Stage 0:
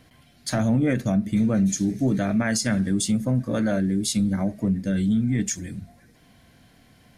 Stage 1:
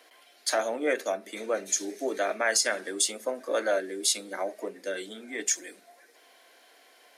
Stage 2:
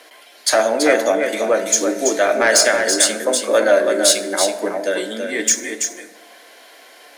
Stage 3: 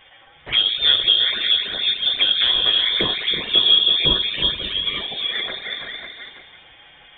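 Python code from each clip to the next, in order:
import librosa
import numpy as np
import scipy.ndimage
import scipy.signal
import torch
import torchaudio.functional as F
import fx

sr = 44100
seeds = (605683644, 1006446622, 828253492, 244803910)

y1 = scipy.signal.sosfilt(scipy.signal.butter(6, 380.0, 'highpass', fs=sr, output='sos'), x)
y1 = y1 * 10.0 ** (2.0 / 20.0)
y2 = fx.fold_sine(y1, sr, drive_db=5, ceiling_db=-9.0)
y2 = y2 + 10.0 ** (-6.0 / 20.0) * np.pad(y2, (int(331 * sr / 1000.0), 0))[:len(y2)]
y2 = fx.rev_fdn(y2, sr, rt60_s=1.4, lf_ratio=0.8, hf_ratio=0.45, size_ms=10.0, drr_db=9.0)
y2 = y2 * 10.0 ** (3.0 / 20.0)
y3 = fx.echo_multitap(y2, sr, ms=(96, 297, 343, 374, 449, 547), db=(-19.5, -16.5, -17.0, -10.5, -15.0, -9.0))
y3 = fx.env_flanger(y3, sr, rest_ms=10.0, full_db=-11.0)
y3 = fx.freq_invert(y3, sr, carrier_hz=3900)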